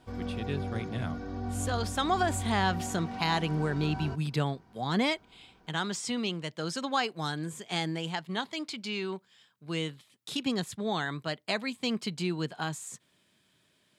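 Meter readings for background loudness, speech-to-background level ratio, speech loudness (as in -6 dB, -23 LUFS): -37.5 LUFS, 5.0 dB, -32.5 LUFS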